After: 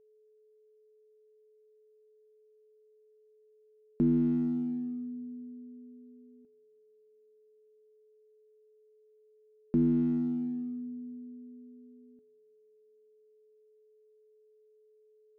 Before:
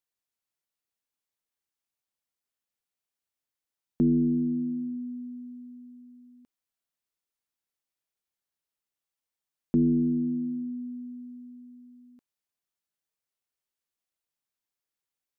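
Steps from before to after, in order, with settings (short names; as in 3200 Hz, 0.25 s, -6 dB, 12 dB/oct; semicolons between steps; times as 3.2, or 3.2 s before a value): Wiener smoothing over 41 samples; two-slope reverb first 0.22 s, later 3 s, from -19 dB, DRR 16.5 dB; whine 430 Hz -58 dBFS; gain -3 dB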